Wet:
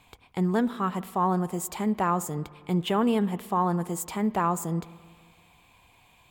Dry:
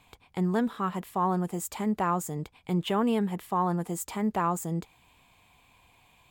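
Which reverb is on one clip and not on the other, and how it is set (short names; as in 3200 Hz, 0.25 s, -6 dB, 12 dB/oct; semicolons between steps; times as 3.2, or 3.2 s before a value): spring tank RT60 1.8 s, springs 54/58 ms, chirp 25 ms, DRR 17.5 dB; gain +2 dB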